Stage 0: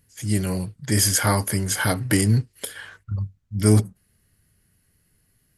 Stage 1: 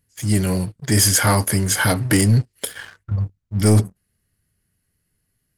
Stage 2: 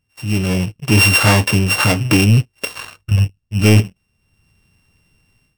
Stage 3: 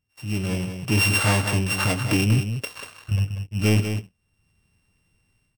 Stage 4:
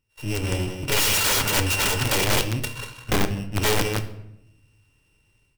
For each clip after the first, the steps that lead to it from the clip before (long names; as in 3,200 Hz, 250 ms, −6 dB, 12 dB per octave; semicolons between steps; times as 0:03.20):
leveller curve on the samples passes 2; level −2.5 dB
samples sorted by size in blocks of 16 samples; high-shelf EQ 11,000 Hz −6.5 dB; automatic gain control gain up to 14.5 dB; level −1.5 dB
single-tap delay 190 ms −8 dB; level −8.5 dB
lower of the sound and its delayed copy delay 2.1 ms; wrap-around overflow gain 20 dB; rectangular room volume 250 cubic metres, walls mixed, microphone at 0.37 metres; level +3.5 dB